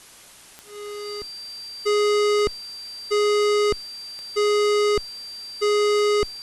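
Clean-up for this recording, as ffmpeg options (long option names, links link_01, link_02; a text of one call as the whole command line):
ffmpeg -i in.wav -af "adeclick=threshold=4,bandreject=frequency=4700:width=30,afwtdn=0.005" out.wav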